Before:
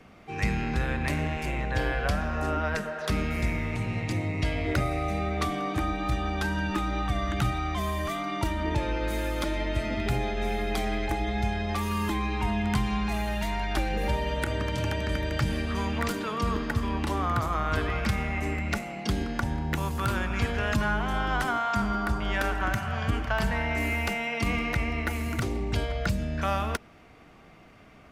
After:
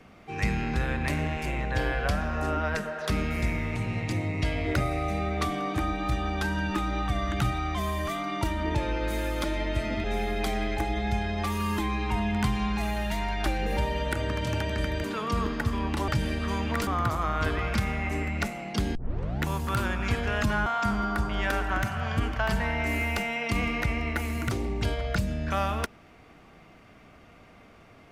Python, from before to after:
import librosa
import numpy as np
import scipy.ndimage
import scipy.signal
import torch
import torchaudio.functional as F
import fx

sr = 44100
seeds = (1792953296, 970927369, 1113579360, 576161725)

y = fx.edit(x, sr, fx.cut(start_s=10.04, length_s=0.31),
    fx.move(start_s=15.35, length_s=0.79, to_s=17.18),
    fx.tape_start(start_s=19.26, length_s=0.48),
    fx.cut(start_s=20.97, length_s=0.6), tone=tone)